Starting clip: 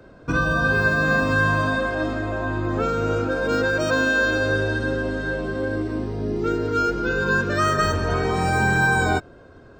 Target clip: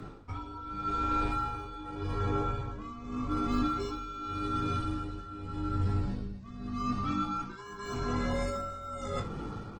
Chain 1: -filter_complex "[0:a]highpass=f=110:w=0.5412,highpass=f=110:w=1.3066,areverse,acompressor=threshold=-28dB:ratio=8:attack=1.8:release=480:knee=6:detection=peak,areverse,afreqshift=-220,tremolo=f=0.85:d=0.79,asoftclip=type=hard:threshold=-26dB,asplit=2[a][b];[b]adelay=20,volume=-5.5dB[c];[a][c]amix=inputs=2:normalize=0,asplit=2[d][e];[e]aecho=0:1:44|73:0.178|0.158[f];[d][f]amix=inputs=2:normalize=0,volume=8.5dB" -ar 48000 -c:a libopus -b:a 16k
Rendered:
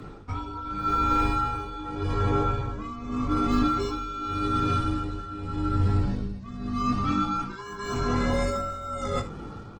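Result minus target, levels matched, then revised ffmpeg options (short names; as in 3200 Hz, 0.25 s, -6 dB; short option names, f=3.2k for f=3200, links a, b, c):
compressor: peak gain reduction -6.5 dB
-filter_complex "[0:a]highpass=f=110:w=0.5412,highpass=f=110:w=1.3066,areverse,acompressor=threshold=-35.5dB:ratio=8:attack=1.8:release=480:knee=6:detection=peak,areverse,afreqshift=-220,tremolo=f=0.85:d=0.79,asoftclip=type=hard:threshold=-26dB,asplit=2[a][b];[b]adelay=20,volume=-5.5dB[c];[a][c]amix=inputs=2:normalize=0,asplit=2[d][e];[e]aecho=0:1:44|73:0.178|0.158[f];[d][f]amix=inputs=2:normalize=0,volume=8.5dB" -ar 48000 -c:a libopus -b:a 16k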